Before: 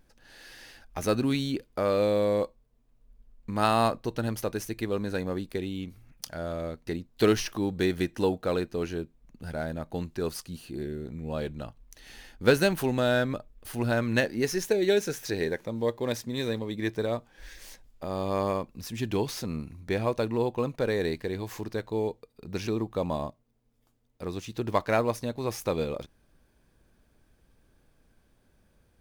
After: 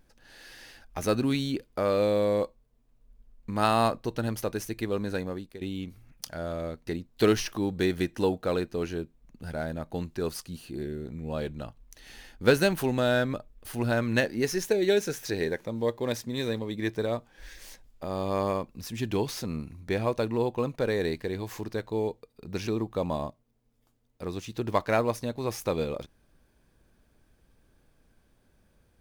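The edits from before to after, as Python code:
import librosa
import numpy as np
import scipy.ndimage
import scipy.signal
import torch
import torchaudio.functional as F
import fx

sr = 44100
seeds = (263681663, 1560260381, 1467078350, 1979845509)

y = fx.edit(x, sr, fx.fade_out_to(start_s=5.14, length_s=0.47, floor_db=-14.0), tone=tone)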